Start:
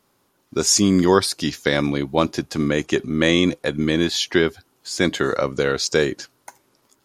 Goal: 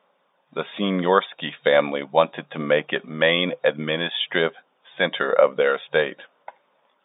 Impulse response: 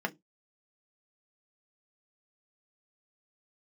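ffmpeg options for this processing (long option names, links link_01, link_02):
-af "lowshelf=frequency=430:width_type=q:width=3:gain=-7,aphaser=in_gain=1:out_gain=1:delay=1.2:decay=0.25:speed=1.1:type=sinusoidal,afftfilt=real='re*between(b*sr/4096,150,3700)':imag='im*between(b*sr/4096,150,3700)':win_size=4096:overlap=0.75"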